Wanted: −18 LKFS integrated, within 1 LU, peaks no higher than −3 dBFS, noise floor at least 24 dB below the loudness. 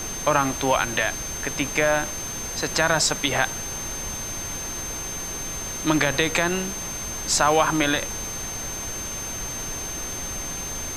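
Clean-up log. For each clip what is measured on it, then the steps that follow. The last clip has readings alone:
interfering tone 6,300 Hz; level of the tone −31 dBFS; background noise floor −32 dBFS; target noise floor −48 dBFS; integrated loudness −24.0 LKFS; sample peak −4.0 dBFS; target loudness −18.0 LKFS
→ notch filter 6,300 Hz, Q 30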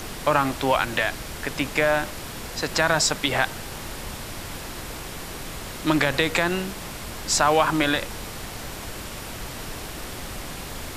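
interfering tone none found; background noise floor −36 dBFS; target noise floor −50 dBFS
→ noise reduction from a noise print 14 dB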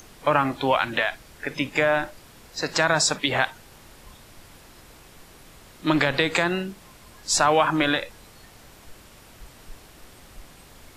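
background noise floor −50 dBFS; integrated loudness −23.0 LKFS; sample peak −4.0 dBFS; target loudness −18.0 LKFS
→ level +5 dB
brickwall limiter −3 dBFS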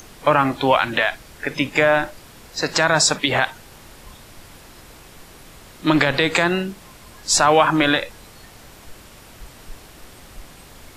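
integrated loudness −18.5 LKFS; sample peak −3.0 dBFS; background noise floor −45 dBFS

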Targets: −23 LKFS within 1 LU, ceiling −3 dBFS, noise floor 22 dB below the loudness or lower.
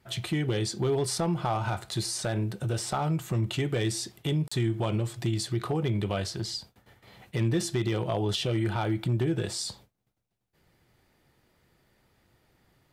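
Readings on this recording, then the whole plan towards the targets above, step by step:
share of clipped samples 0.5%; peaks flattened at −19.5 dBFS; number of dropouts 1; longest dropout 35 ms; integrated loudness −29.5 LKFS; sample peak −19.5 dBFS; target loudness −23.0 LKFS
→ clipped peaks rebuilt −19.5 dBFS
repair the gap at 0:04.48, 35 ms
level +6.5 dB

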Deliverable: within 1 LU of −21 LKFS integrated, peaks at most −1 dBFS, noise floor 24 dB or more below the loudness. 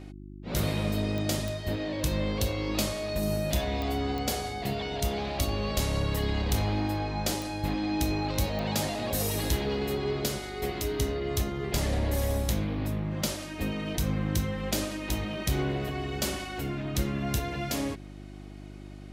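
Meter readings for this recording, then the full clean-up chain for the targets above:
number of clicks 6; mains hum 50 Hz; hum harmonics up to 350 Hz; level of the hum −41 dBFS; integrated loudness −30.5 LKFS; sample peak −16.5 dBFS; target loudness −21.0 LKFS
→ click removal
hum removal 50 Hz, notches 7
level +9.5 dB

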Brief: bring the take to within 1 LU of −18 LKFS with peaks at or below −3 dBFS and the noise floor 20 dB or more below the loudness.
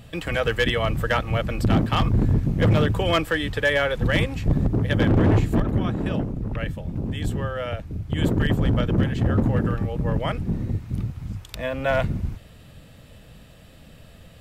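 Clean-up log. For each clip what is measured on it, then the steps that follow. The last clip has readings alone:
share of clipped samples 1.4%; peaks flattened at −13.0 dBFS; integrated loudness −23.5 LKFS; sample peak −13.0 dBFS; target loudness −18.0 LKFS
→ clipped peaks rebuilt −13 dBFS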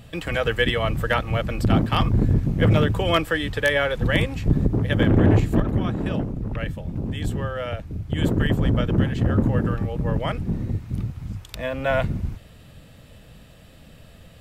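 share of clipped samples 0.0%; integrated loudness −22.5 LKFS; sample peak −4.0 dBFS; target loudness −18.0 LKFS
→ level +4.5 dB
brickwall limiter −3 dBFS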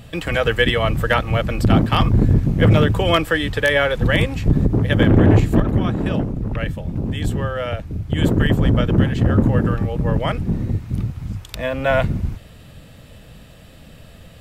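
integrated loudness −18.5 LKFS; sample peak −3.0 dBFS; background noise floor −43 dBFS

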